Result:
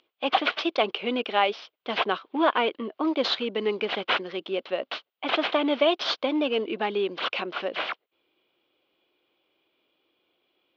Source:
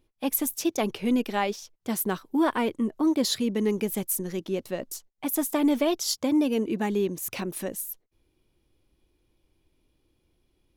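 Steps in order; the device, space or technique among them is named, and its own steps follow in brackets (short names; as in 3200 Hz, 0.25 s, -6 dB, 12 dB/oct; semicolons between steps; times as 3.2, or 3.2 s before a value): toy sound module (decimation joined by straight lines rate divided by 4×; pulse-width modulation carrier 15000 Hz; speaker cabinet 610–3900 Hz, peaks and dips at 910 Hz -5 dB, 1800 Hz -7 dB, 3100 Hz +5 dB); gain +8.5 dB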